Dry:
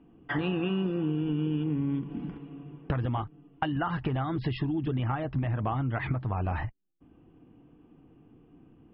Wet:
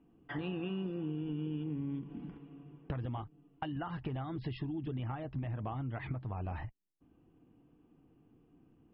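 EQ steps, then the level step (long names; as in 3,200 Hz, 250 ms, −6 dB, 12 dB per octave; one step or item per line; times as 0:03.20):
dynamic equaliser 1,400 Hz, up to −4 dB, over −49 dBFS, Q 1.3
−8.5 dB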